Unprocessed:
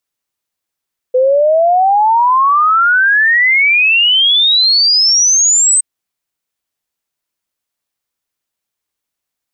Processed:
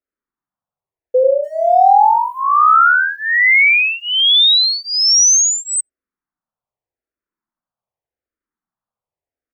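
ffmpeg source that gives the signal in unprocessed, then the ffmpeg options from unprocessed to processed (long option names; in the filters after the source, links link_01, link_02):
-f lavfi -i "aevalsrc='0.447*clip(min(t,4.67-t)/0.01,0,1)*sin(2*PI*500*4.67/log(8300/500)*(exp(log(8300/500)*t/4.67)-1))':duration=4.67:sample_rate=44100"
-filter_complex "[0:a]acrossover=split=1700[link_01][link_02];[link_01]aecho=1:1:86:0.668[link_03];[link_02]aeval=exprs='val(0)*gte(abs(val(0)),0.00668)':channel_layout=same[link_04];[link_03][link_04]amix=inputs=2:normalize=0,asplit=2[link_05][link_06];[link_06]afreqshift=-0.85[link_07];[link_05][link_07]amix=inputs=2:normalize=1"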